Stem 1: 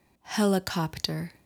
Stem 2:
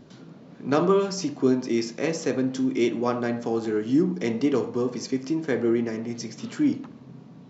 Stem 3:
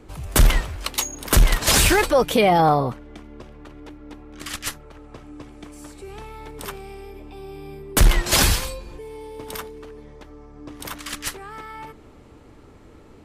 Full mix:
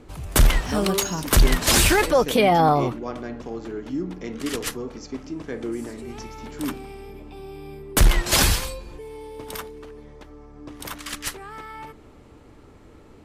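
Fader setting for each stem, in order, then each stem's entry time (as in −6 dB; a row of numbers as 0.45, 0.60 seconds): −1.5, −7.0, −1.0 decibels; 0.35, 0.00, 0.00 seconds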